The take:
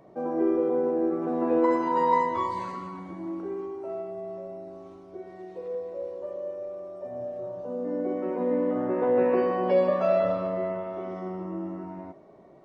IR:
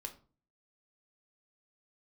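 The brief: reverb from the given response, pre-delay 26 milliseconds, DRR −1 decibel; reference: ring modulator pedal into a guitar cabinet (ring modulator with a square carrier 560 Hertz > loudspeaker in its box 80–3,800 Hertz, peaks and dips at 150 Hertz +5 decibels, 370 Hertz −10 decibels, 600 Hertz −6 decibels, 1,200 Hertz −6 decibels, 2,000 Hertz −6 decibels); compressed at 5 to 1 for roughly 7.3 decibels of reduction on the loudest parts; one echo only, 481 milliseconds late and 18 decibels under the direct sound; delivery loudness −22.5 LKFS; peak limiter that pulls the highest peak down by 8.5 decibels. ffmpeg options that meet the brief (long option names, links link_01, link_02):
-filter_complex "[0:a]acompressor=threshold=-26dB:ratio=5,alimiter=level_in=2dB:limit=-24dB:level=0:latency=1,volume=-2dB,aecho=1:1:481:0.126,asplit=2[link_01][link_02];[1:a]atrim=start_sample=2205,adelay=26[link_03];[link_02][link_03]afir=irnorm=-1:irlink=0,volume=4dB[link_04];[link_01][link_04]amix=inputs=2:normalize=0,aeval=exprs='val(0)*sgn(sin(2*PI*560*n/s))':channel_layout=same,highpass=80,equalizer=frequency=150:width_type=q:width=4:gain=5,equalizer=frequency=370:width_type=q:width=4:gain=-10,equalizer=frequency=600:width_type=q:width=4:gain=-6,equalizer=frequency=1200:width_type=q:width=4:gain=-6,equalizer=frequency=2000:width_type=q:width=4:gain=-6,lowpass=frequency=3800:width=0.5412,lowpass=frequency=3800:width=1.3066,volume=11dB"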